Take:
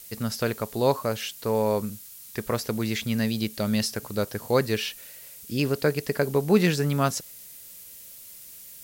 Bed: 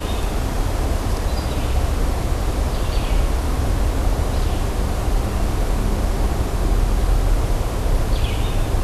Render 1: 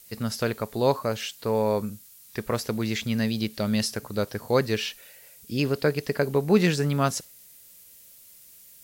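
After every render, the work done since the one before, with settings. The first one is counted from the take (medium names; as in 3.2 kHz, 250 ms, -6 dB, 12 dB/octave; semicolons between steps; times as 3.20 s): noise print and reduce 6 dB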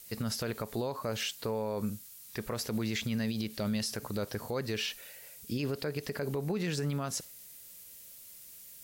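compression, threshold -24 dBFS, peak gain reduction 10.5 dB; peak limiter -24.5 dBFS, peak gain reduction 10 dB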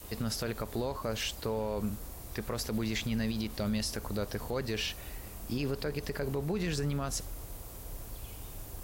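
add bed -25 dB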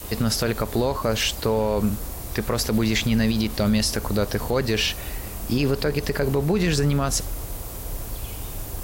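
trim +11.5 dB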